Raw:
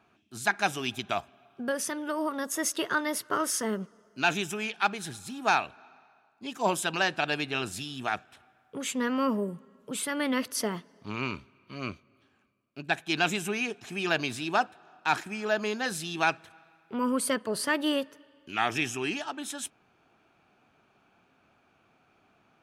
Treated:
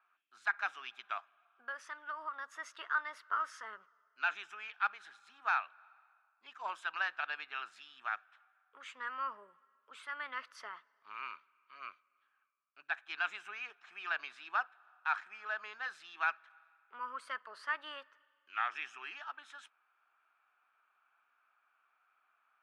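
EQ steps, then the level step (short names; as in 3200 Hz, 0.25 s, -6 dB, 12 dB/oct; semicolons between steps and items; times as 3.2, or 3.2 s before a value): ladder band-pass 1500 Hz, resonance 50%; +2.0 dB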